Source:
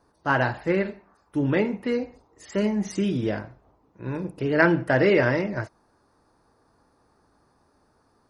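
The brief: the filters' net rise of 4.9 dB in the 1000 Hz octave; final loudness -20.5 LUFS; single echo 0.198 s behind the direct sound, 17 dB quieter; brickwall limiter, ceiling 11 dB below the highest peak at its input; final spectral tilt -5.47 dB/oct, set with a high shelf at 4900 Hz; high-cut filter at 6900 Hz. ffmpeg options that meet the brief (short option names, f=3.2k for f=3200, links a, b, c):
-af "lowpass=6.9k,equalizer=f=1k:t=o:g=6,highshelf=f=4.9k:g=6.5,alimiter=limit=-12dB:level=0:latency=1,aecho=1:1:198:0.141,volume=4.5dB"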